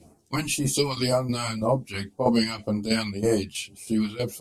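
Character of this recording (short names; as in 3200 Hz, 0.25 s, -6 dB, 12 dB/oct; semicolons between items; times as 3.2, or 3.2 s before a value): phasing stages 2, 1.9 Hz, lowest notch 430–3000 Hz; tremolo saw down 3.1 Hz, depth 70%; a shimmering, thickened sound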